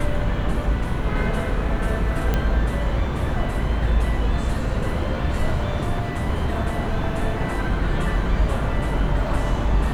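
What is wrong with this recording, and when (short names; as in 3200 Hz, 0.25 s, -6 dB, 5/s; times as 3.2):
2.34 pop -9 dBFS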